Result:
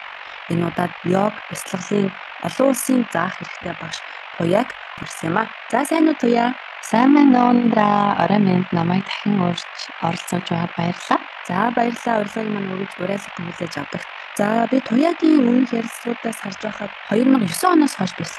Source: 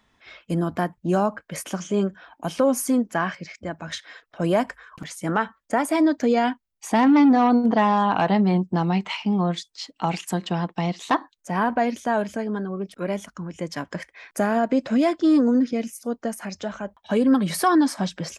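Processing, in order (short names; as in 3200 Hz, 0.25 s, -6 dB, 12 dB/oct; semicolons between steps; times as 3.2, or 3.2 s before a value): band noise 620–2800 Hz -38 dBFS; AM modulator 47 Hz, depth 55%; gain +6.5 dB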